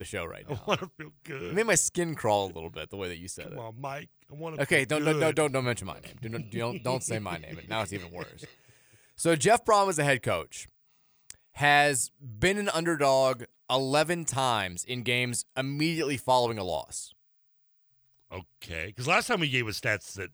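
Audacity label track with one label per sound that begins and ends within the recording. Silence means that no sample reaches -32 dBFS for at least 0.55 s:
9.200000	10.620000	sound
11.300000	17.040000	sound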